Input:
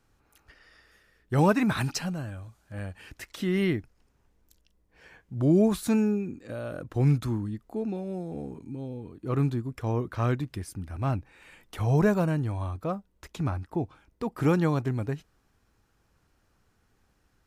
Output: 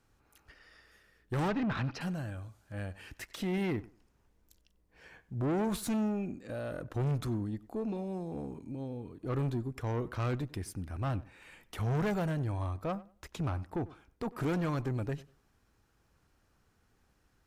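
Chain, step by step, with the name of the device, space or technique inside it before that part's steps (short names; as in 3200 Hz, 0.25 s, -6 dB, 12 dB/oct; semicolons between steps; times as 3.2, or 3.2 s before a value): 1.48–2.01 air absorption 270 m; rockabilly slapback (tube stage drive 27 dB, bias 0.35; tape echo 95 ms, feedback 23%, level -17.5 dB, low-pass 2000 Hz); gain -1 dB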